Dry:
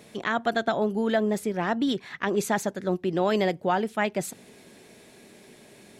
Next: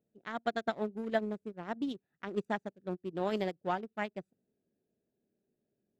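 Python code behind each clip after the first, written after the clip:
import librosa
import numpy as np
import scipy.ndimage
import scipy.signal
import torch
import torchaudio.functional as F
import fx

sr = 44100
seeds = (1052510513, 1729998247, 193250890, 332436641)

y = fx.wiener(x, sr, points=41)
y = fx.upward_expand(y, sr, threshold_db=-37.0, expansion=2.5)
y = y * librosa.db_to_amplitude(-4.0)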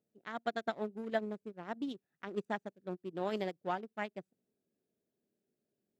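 y = fx.low_shelf(x, sr, hz=99.0, db=-8.0)
y = y * librosa.db_to_amplitude(-2.5)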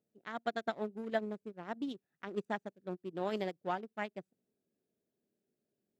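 y = x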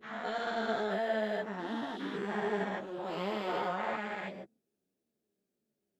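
y = fx.spec_dilate(x, sr, span_ms=480)
y = fx.ensemble(y, sr)
y = y * librosa.db_to_amplitude(-2.0)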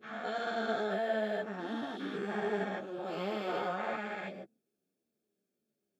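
y = fx.notch_comb(x, sr, f0_hz=990.0)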